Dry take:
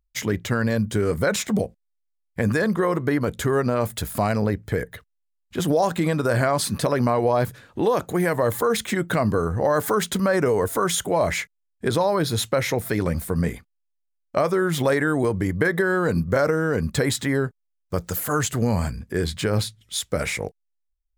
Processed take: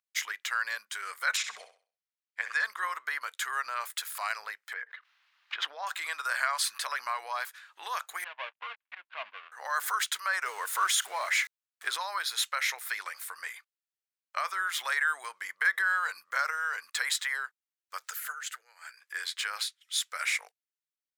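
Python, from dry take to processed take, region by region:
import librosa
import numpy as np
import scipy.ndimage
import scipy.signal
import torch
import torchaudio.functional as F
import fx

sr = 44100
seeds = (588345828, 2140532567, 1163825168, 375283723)

y = fx.chain(x, sr, fx.lowpass(hz=6500.0, slope=12),
    fx.room_flutter(wall_m=11.2, rt60_s=0.39), at=(1.37, 2.64))
y = fx.chain(y, sr, fx.brickwall_highpass(low_hz=230.0),
    fx.air_absorb(metres=300.0),
    fx.pre_swell(db_per_s=62.0), at=(4.73, 5.87))
y = fx.chain(y, sr, fx.dead_time(dead_ms=0.22),
    fx.cabinet(low_hz=120.0, low_slope=12, high_hz=2700.0, hz=(260.0, 400.0, 640.0, 1300.0, 1900.0), db=(8, -7, 4, -8, -6)),
    fx.upward_expand(threshold_db=-39.0, expansion=2.5), at=(8.24, 9.52))
y = fx.chain(y, sr, fx.zero_step(step_db=-36.5),
    fx.low_shelf(hz=400.0, db=11.0), at=(10.44, 11.97))
y = fx.chain(y, sr, fx.peak_eq(hz=1100.0, db=-14.5, octaves=0.29),
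    fx.over_compress(threshold_db=-26.0, ratio=-0.5),
    fx.cheby_ripple_highpass(hz=330.0, ripple_db=9), at=(18.11, 18.97))
y = scipy.signal.sosfilt(scipy.signal.butter(4, 1200.0, 'highpass', fs=sr, output='sos'), y)
y = fx.high_shelf(y, sr, hz=5600.0, db=-5.5)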